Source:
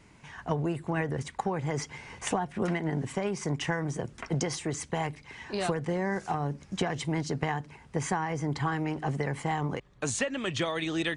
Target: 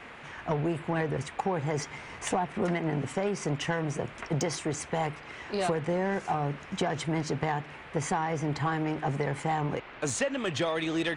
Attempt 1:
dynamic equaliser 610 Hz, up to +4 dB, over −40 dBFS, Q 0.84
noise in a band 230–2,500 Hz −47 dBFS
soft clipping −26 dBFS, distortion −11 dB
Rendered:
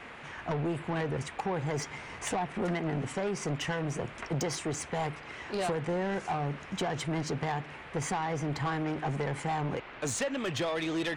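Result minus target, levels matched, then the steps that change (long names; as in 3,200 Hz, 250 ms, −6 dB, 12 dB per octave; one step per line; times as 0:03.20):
soft clipping: distortion +9 dB
change: soft clipping −18.5 dBFS, distortion −20 dB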